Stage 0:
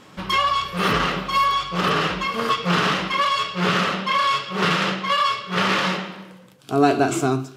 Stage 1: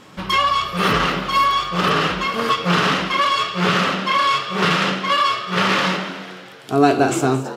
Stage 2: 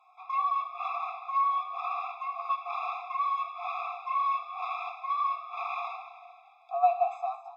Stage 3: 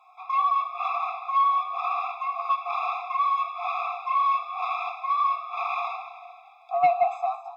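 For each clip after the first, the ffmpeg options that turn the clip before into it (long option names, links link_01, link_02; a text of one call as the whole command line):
ffmpeg -i in.wav -filter_complex "[0:a]asplit=6[link_01][link_02][link_03][link_04][link_05][link_06];[link_02]adelay=224,afreqshift=89,volume=-15dB[link_07];[link_03]adelay=448,afreqshift=178,volume=-20dB[link_08];[link_04]adelay=672,afreqshift=267,volume=-25.1dB[link_09];[link_05]adelay=896,afreqshift=356,volume=-30.1dB[link_10];[link_06]adelay=1120,afreqshift=445,volume=-35.1dB[link_11];[link_01][link_07][link_08][link_09][link_10][link_11]amix=inputs=6:normalize=0,volume=2.5dB" out.wav
ffmpeg -i in.wav -filter_complex "[0:a]acrossover=split=7200[link_01][link_02];[link_02]acompressor=threshold=-56dB:ratio=4:attack=1:release=60[link_03];[link_01][link_03]amix=inputs=2:normalize=0,asplit=3[link_04][link_05][link_06];[link_04]bandpass=frequency=730:width_type=q:width=8,volume=0dB[link_07];[link_05]bandpass=frequency=1090:width_type=q:width=8,volume=-6dB[link_08];[link_06]bandpass=frequency=2440:width_type=q:width=8,volume=-9dB[link_09];[link_07][link_08][link_09]amix=inputs=3:normalize=0,afftfilt=real='re*eq(mod(floor(b*sr/1024/670),2),1)':imag='im*eq(mod(floor(b*sr/1024/670),2),1)':win_size=1024:overlap=0.75,volume=-4dB" out.wav
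ffmpeg -i in.wav -af "aeval=exprs='0.224*sin(PI/2*1.41*val(0)/0.224)':channel_layout=same,volume=-1dB" out.wav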